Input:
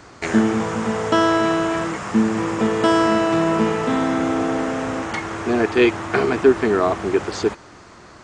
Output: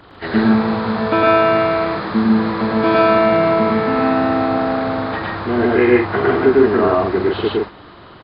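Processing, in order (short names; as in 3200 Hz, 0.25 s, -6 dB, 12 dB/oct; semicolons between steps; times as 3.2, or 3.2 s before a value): nonlinear frequency compression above 1400 Hz 1.5:1; loudspeakers at several distances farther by 37 m 0 dB, 51 m -3 dB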